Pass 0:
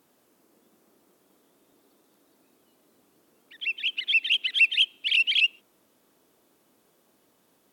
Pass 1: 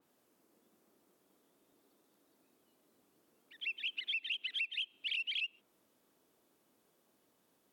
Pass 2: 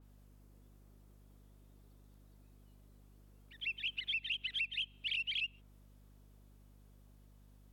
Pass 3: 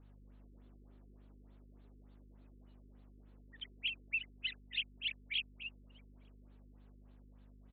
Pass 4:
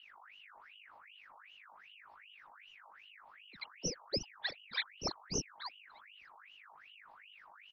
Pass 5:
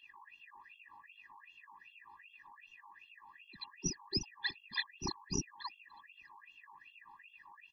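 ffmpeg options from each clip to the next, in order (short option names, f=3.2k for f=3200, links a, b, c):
-af "acompressor=threshold=-25dB:ratio=12,adynamicequalizer=threshold=0.00631:dfrequency=4000:dqfactor=0.7:tfrequency=4000:tqfactor=0.7:attack=5:release=100:ratio=0.375:range=2:mode=cutabove:tftype=highshelf,volume=-8.5dB"
-af "aeval=exprs='val(0)+0.001*(sin(2*PI*50*n/s)+sin(2*PI*2*50*n/s)/2+sin(2*PI*3*50*n/s)/3+sin(2*PI*4*50*n/s)/4+sin(2*PI*5*50*n/s)/5)':c=same"
-filter_complex "[0:a]asplit=2[a][b];[b]adelay=224,lowpass=f=4.5k:p=1,volume=-7.5dB,asplit=2[c][d];[d]adelay=224,lowpass=f=4.5k:p=1,volume=0.36,asplit=2[e][f];[f]adelay=224,lowpass=f=4.5k:p=1,volume=0.36,asplit=2[g][h];[h]adelay=224,lowpass=f=4.5k:p=1,volume=0.36[i];[a][c][e][g][i]amix=inputs=5:normalize=0,afftfilt=real='re*lt(b*sr/1024,450*pow(4600/450,0.5+0.5*sin(2*PI*3.4*pts/sr)))':imag='im*lt(b*sr/1024,450*pow(4600/450,0.5+0.5*sin(2*PI*3.4*pts/sr)))':win_size=1024:overlap=0.75,volume=1.5dB"
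-af "aeval=exprs='val(0)*sin(2*PI*1900*n/s+1900*0.55/2.6*sin(2*PI*2.6*n/s))':c=same,volume=4dB"
-af "afftfilt=real='re*eq(mod(floor(b*sr/1024/400),2),0)':imag='im*eq(mod(floor(b*sr/1024/400),2),0)':win_size=1024:overlap=0.75,volume=3dB"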